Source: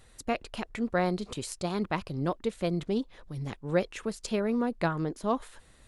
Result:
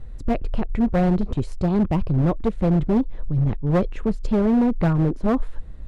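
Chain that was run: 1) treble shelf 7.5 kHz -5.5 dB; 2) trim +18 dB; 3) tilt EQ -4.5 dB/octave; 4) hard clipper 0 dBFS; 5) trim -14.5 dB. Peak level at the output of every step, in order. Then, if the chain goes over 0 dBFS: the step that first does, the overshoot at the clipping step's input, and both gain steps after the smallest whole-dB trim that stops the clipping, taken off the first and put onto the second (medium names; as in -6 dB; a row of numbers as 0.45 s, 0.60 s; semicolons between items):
-13.5 dBFS, +4.5 dBFS, +10.0 dBFS, 0.0 dBFS, -14.5 dBFS; step 2, 10.0 dB; step 2 +8 dB, step 5 -4.5 dB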